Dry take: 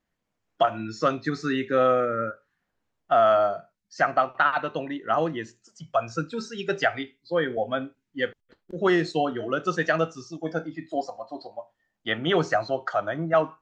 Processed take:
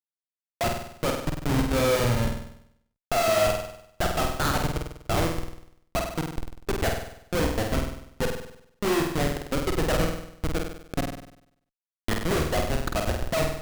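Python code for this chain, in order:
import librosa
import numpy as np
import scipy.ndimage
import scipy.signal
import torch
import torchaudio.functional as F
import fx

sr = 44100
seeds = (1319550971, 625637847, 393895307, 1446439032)

y = fx.schmitt(x, sr, flips_db=-21.5)
y = fx.room_flutter(y, sr, wall_m=8.4, rt60_s=0.72)
y = y * 10.0 ** (2.5 / 20.0)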